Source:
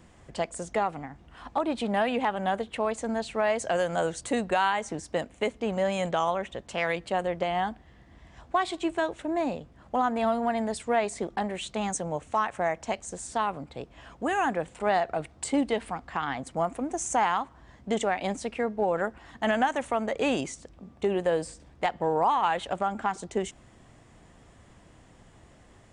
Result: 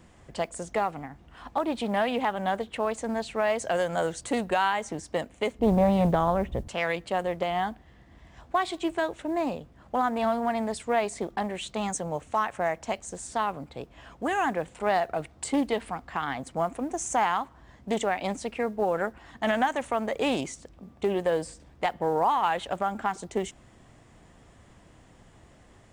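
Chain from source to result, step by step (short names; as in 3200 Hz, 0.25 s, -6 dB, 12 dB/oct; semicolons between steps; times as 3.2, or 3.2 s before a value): 5.59–6.68 tilt -4.5 dB/oct; modulation noise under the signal 34 dB; Doppler distortion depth 0.28 ms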